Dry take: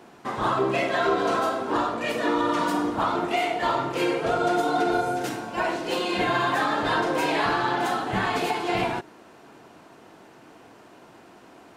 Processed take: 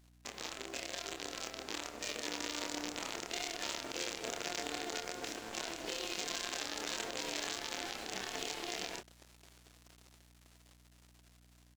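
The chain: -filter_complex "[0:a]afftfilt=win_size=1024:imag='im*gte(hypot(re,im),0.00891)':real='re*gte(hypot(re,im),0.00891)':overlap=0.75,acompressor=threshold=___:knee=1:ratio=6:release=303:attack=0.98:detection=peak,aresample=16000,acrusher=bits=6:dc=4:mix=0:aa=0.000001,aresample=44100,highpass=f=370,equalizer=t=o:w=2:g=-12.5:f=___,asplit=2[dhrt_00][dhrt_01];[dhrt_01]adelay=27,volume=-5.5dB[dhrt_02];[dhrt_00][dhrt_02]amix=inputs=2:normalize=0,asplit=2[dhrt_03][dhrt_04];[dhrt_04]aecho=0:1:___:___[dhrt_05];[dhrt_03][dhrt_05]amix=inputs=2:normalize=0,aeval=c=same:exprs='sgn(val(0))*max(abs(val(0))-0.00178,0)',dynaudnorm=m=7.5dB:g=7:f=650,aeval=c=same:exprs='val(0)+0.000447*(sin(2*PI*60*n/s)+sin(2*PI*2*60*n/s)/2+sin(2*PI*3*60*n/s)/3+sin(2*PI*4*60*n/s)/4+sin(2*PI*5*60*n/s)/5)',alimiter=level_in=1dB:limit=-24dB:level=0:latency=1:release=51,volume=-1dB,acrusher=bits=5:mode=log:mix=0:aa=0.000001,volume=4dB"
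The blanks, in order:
-33dB, 1100, 1058, 0.0668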